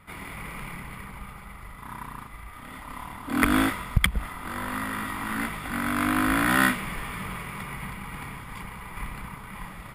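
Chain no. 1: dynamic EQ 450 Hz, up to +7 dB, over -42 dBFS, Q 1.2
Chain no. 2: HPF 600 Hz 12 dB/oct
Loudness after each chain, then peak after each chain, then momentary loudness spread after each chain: -26.0, -30.5 LUFS; -4.0, -3.0 dBFS; 20, 18 LU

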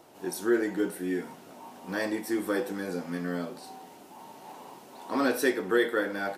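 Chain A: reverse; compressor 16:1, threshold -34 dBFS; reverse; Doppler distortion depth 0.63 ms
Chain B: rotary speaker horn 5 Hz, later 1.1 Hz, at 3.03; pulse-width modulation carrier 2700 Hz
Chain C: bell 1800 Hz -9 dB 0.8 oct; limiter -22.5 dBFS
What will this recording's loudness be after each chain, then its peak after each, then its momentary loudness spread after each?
-41.0, -32.0, -33.5 LUFS; -25.0, -16.0, -22.5 dBFS; 10, 8, 17 LU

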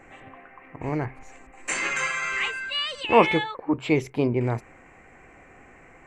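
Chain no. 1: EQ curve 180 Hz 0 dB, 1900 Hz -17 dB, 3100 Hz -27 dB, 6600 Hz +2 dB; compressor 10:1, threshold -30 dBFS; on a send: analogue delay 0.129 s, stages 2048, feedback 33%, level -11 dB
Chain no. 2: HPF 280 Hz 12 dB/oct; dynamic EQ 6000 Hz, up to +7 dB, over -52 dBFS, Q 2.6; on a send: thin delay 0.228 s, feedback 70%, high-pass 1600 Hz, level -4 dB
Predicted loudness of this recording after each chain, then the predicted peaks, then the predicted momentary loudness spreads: -37.0, -24.0 LUFS; -21.0, -3.5 dBFS; 19, 20 LU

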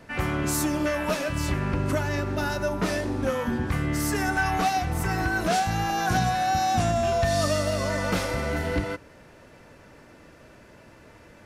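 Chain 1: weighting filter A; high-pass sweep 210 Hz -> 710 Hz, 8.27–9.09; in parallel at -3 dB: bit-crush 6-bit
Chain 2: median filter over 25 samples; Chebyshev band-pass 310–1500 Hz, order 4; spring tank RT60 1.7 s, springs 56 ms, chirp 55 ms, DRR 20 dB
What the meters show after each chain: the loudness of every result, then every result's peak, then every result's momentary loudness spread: -22.5, -31.0 LUFS; -8.5, -17.5 dBFS; 6, 8 LU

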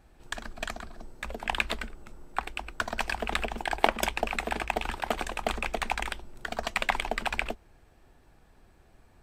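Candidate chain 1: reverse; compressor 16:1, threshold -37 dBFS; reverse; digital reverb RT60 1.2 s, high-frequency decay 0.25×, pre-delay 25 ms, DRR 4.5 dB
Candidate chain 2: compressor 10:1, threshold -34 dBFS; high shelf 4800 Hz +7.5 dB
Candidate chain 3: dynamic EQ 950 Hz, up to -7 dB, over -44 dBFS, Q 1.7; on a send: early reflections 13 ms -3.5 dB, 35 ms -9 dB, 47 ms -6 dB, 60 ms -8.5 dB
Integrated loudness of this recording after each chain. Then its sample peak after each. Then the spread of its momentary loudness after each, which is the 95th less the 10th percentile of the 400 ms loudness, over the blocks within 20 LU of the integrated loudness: -42.5, -40.0, -31.0 LUFS; -22.5, -13.5, -5.5 dBFS; 18, 5, 11 LU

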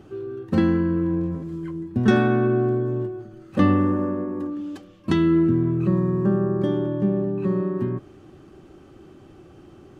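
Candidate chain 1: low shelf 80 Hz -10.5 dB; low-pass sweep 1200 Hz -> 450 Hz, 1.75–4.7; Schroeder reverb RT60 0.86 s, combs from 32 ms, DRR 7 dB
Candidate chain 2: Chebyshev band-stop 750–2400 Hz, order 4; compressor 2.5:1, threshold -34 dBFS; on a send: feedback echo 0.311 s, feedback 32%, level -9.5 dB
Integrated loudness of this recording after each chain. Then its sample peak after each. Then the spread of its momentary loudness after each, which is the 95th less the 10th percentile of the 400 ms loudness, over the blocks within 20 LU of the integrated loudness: -20.0, -32.5 LUFS; -5.5, -19.0 dBFS; 16, 17 LU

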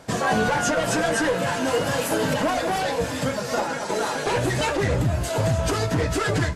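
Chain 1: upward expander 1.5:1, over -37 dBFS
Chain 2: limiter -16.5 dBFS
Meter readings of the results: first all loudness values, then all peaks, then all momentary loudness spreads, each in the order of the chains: -25.0, -25.5 LUFS; -10.5, -16.5 dBFS; 6, 2 LU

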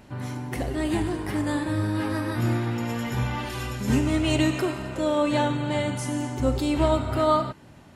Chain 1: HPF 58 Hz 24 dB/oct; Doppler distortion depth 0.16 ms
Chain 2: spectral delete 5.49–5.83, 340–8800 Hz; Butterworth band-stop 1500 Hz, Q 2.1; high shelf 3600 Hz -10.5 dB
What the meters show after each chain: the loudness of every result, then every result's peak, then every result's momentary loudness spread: -26.0, -26.5 LUFS; -8.5, -10.0 dBFS; 8, 8 LU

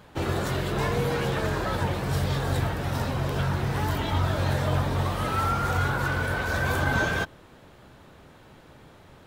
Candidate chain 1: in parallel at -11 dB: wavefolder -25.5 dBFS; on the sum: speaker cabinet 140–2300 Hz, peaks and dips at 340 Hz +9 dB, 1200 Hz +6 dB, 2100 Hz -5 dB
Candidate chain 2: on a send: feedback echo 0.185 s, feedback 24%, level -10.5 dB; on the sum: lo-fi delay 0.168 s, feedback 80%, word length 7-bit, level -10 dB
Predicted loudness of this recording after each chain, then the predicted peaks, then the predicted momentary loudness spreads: -26.0, -25.5 LUFS; -12.0, -10.5 dBFS; 4, 6 LU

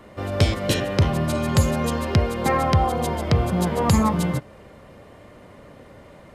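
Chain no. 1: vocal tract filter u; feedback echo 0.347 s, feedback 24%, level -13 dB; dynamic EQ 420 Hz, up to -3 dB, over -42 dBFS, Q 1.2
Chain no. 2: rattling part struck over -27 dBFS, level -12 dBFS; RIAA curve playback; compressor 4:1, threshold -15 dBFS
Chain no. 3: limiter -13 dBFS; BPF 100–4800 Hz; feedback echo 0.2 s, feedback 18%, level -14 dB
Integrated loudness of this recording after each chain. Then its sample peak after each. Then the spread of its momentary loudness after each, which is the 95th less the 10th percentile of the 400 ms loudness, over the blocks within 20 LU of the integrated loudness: -34.0, -19.5, -24.5 LUFS; -17.5, -5.0, -11.5 dBFS; 9, 21, 4 LU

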